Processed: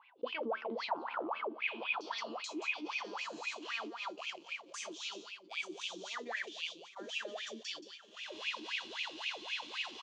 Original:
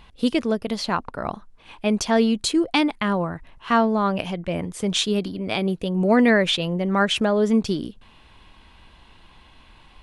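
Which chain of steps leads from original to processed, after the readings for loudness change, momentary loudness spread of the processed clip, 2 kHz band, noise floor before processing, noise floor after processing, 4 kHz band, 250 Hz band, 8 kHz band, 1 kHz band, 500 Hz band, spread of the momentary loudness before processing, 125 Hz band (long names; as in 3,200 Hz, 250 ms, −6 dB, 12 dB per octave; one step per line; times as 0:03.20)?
−17.5 dB, 6 LU, −10.5 dB, −52 dBFS, −59 dBFS, −12.5 dB, −27.5 dB, −15.5 dB, −15.0 dB, −20.5 dB, 10 LU, below −35 dB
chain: camcorder AGC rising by 42 dB per second
band-pass filter sweep 930 Hz → 6,600 Hz, 0:01.20–0:02.26
tuned comb filter 77 Hz, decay 0.24 s, harmonics all, mix 80%
feedback delay with all-pass diffusion 1,000 ms, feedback 45%, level −10.5 dB
noise gate −50 dBFS, range −29 dB
low-shelf EQ 290 Hz +7 dB
soft clipping −15.5 dBFS, distortion −33 dB
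flat-topped bell 4,300 Hz +12 dB
single-tap delay 175 ms −15 dB
brickwall limiter −28.5 dBFS, peak gain reduction 16.5 dB
LFO wah 3.8 Hz 300–2,500 Hz, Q 15
envelope flattener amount 50%
level +13 dB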